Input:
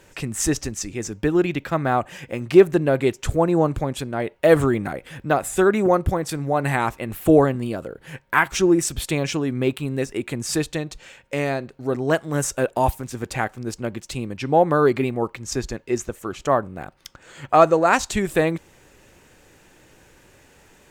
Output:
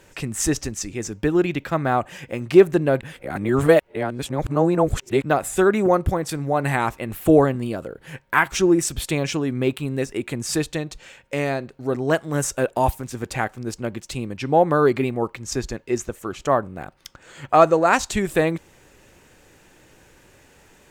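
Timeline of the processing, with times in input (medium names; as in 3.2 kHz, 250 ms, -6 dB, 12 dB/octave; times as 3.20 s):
3.01–5.22 s: reverse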